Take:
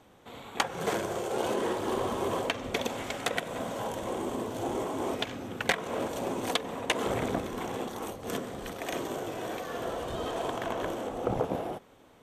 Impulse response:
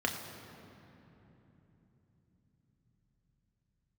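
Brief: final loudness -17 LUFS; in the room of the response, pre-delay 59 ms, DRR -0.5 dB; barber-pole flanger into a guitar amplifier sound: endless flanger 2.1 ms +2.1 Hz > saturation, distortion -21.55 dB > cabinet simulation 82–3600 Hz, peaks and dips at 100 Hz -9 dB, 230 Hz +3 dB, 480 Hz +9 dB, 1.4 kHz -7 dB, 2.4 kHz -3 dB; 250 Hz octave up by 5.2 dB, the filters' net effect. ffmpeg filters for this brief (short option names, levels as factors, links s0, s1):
-filter_complex "[0:a]equalizer=f=250:t=o:g=4.5,asplit=2[s0][s1];[1:a]atrim=start_sample=2205,adelay=59[s2];[s1][s2]afir=irnorm=-1:irlink=0,volume=0.447[s3];[s0][s3]amix=inputs=2:normalize=0,asplit=2[s4][s5];[s5]adelay=2.1,afreqshift=2.1[s6];[s4][s6]amix=inputs=2:normalize=1,asoftclip=threshold=0.112,highpass=82,equalizer=f=100:t=q:w=4:g=-9,equalizer=f=230:t=q:w=4:g=3,equalizer=f=480:t=q:w=4:g=9,equalizer=f=1400:t=q:w=4:g=-7,equalizer=f=2400:t=q:w=4:g=-3,lowpass=f=3600:w=0.5412,lowpass=f=3600:w=1.3066,volume=3.76"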